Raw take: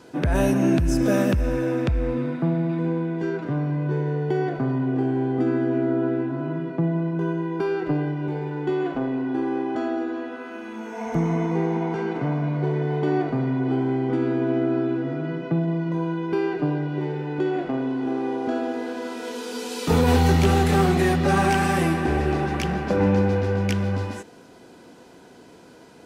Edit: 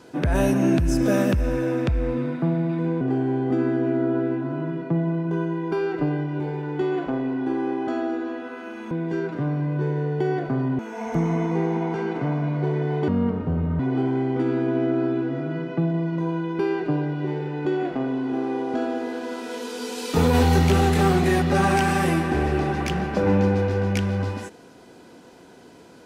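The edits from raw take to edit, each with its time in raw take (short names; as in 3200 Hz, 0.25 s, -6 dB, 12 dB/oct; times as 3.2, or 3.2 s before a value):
3.01–4.89 move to 10.79
13.08–13.53 speed 63%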